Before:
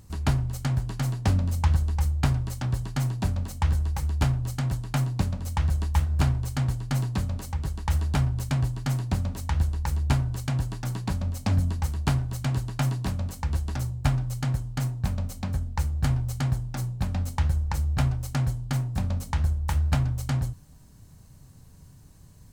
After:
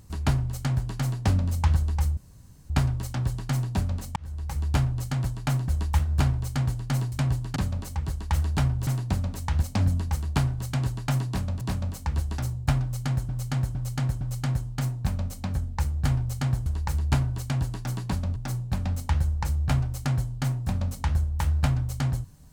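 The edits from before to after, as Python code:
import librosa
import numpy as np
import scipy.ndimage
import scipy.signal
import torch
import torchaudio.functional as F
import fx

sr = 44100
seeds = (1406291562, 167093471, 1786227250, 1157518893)

y = fx.edit(x, sr, fx.insert_room_tone(at_s=2.17, length_s=0.53),
    fx.fade_in_span(start_s=3.63, length_s=0.49),
    fx.cut(start_s=5.15, length_s=0.54),
    fx.move(start_s=8.44, length_s=0.44, to_s=7.13),
    fx.move(start_s=9.64, length_s=1.7, to_s=16.65),
    fx.repeat(start_s=12.98, length_s=0.34, count=2),
    fx.repeat(start_s=14.2, length_s=0.46, count=4), tone=tone)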